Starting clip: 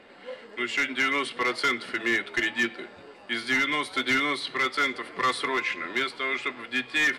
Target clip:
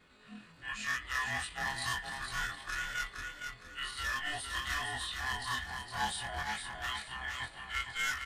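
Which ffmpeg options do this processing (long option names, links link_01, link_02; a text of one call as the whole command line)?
ffmpeg -i in.wav -filter_complex "[0:a]afftfilt=real='re':imag='-im':win_size=2048:overlap=0.75,highpass=320,adynamicequalizer=threshold=0.00398:dfrequency=3000:dqfactor=2.6:tfrequency=3000:tqfactor=2.6:attack=5:release=100:ratio=0.375:range=2.5:mode=cutabove:tftype=bell,atempo=0.87,crystalizer=i=3:c=0,asplit=2[link_01][link_02];[link_02]aecho=0:1:462|924|1386|1848:0.531|0.159|0.0478|0.0143[link_03];[link_01][link_03]amix=inputs=2:normalize=0,afreqshift=-310,volume=-8.5dB" out.wav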